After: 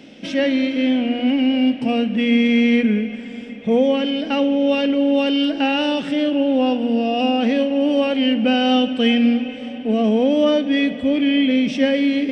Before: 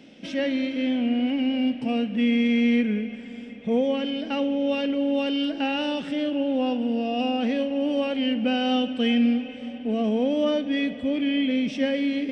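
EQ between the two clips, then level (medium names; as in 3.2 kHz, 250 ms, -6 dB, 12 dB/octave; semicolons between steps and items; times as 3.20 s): hum notches 60/120/180/240 Hz; +7.0 dB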